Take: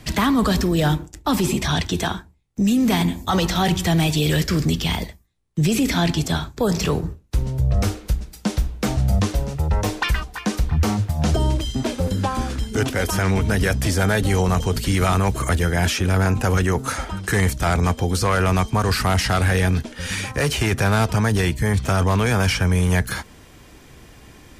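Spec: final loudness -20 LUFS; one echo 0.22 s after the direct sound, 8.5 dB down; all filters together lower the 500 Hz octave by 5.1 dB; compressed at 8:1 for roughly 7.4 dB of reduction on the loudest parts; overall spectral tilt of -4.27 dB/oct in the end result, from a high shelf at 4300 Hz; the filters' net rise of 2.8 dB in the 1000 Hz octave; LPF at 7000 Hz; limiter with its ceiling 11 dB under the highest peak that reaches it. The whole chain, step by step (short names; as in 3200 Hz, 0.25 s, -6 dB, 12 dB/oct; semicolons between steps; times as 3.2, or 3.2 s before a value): LPF 7000 Hz; bell 500 Hz -8.5 dB; bell 1000 Hz +5.5 dB; high shelf 4300 Hz +9 dB; compressor 8:1, threshold -22 dBFS; limiter -20.5 dBFS; echo 0.22 s -8.5 dB; gain +9 dB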